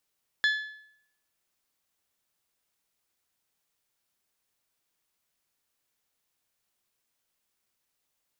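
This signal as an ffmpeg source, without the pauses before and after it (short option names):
-f lavfi -i "aevalsrc='0.106*pow(10,-3*t/0.7)*sin(2*PI*1720*t)+0.0473*pow(10,-3*t/0.569)*sin(2*PI*3440*t)+0.0211*pow(10,-3*t/0.538)*sin(2*PI*4128*t)+0.00944*pow(10,-3*t/0.503)*sin(2*PI*5160*t)+0.00422*pow(10,-3*t/0.462)*sin(2*PI*6880*t)':d=1.55:s=44100"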